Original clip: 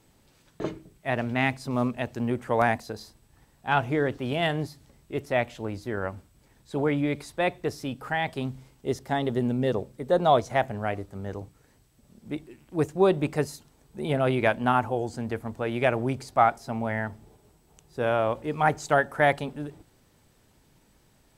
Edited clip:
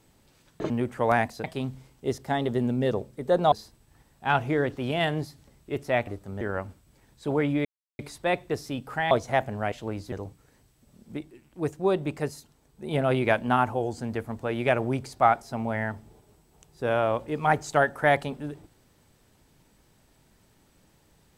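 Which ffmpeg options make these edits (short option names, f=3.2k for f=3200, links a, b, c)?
-filter_complex "[0:a]asplit=12[a][b][c][d][e][f][g][h][i][j][k][l];[a]atrim=end=0.702[m];[b]atrim=start=2.198:end=2.942[n];[c]atrim=start=8.248:end=10.332[o];[d]atrim=start=2.938:end=5.492[p];[e]atrim=start=10.938:end=11.282[q];[f]atrim=start=5.888:end=7.13,asetpts=PTS-STARTPTS,afade=t=out:st=1.238:d=0.004:c=hsin,apad=pad_dur=0.34[r];[g]atrim=start=7.13:end=8.252,asetpts=PTS-STARTPTS,afade=t=in:d=0.004:c=hsin[s];[h]atrim=start=10.328:end=10.942[t];[i]atrim=start=5.488:end=5.892[u];[j]atrim=start=11.278:end=12.332[v];[k]atrim=start=12.328:end=14.072,asetpts=PTS-STARTPTS,volume=-3.5dB[w];[l]atrim=start=14.068[x];[m][n]acrossfade=d=0.004:c1=hsin:c2=hsin[y];[y][o]acrossfade=d=0.004:c1=hsin:c2=hsin[z];[z][p]acrossfade=d=0.004:c1=hsin:c2=hsin[aa];[aa][q]acrossfade=d=0.004:c1=hsin:c2=hsin[ab];[r][s]concat=n=2:v=0:a=1[ac];[ab][ac]acrossfade=d=0.004:c1=hsin:c2=hsin[ad];[ad][t]acrossfade=d=0.004:c1=hsin:c2=hsin[ae];[ae][u]acrossfade=d=0.004:c1=hsin:c2=hsin[af];[af][v]acrossfade=d=0.004:c1=hsin:c2=hsin[ag];[ag][w]acrossfade=d=0.004:c1=hsin:c2=hsin[ah];[ah][x]acrossfade=d=0.004:c1=hsin:c2=hsin"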